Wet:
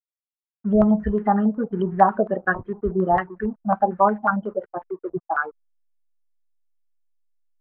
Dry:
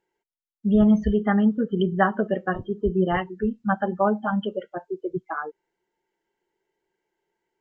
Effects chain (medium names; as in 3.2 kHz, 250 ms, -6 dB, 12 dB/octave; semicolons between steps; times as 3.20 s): hysteresis with a dead band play -44 dBFS; step-sequenced low-pass 11 Hz 680–1800 Hz; trim -1.5 dB